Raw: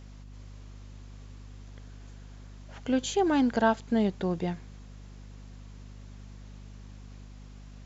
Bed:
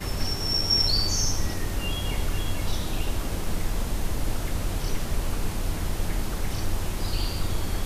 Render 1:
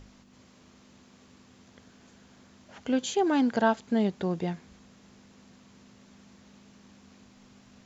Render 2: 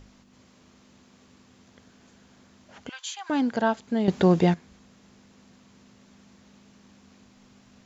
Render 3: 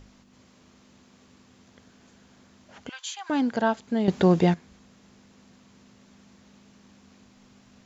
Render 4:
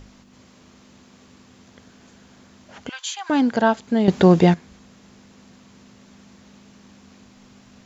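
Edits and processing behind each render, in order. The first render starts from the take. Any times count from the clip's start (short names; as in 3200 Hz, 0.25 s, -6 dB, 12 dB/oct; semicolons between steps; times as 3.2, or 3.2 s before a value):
notches 50/100/150 Hz
2.89–3.3 Chebyshev high-pass 950 Hz, order 4; 4.08–4.54 gain +11 dB
nothing audible
gain +6 dB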